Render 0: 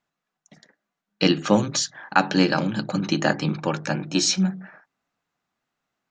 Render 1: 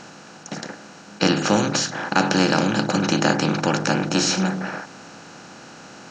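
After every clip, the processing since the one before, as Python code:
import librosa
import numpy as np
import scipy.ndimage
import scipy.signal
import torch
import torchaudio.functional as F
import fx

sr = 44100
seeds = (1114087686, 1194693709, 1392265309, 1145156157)

y = fx.bin_compress(x, sr, power=0.4)
y = y * librosa.db_to_amplitude(-3.5)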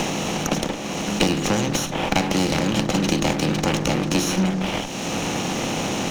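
y = fx.lower_of_two(x, sr, delay_ms=0.32)
y = fx.band_squash(y, sr, depth_pct=100)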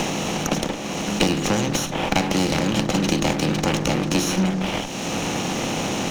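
y = x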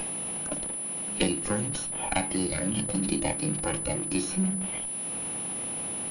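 y = fx.noise_reduce_blind(x, sr, reduce_db=11)
y = fx.pwm(y, sr, carrier_hz=10000.0)
y = y * librosa.db_to_amplitude(-5.5)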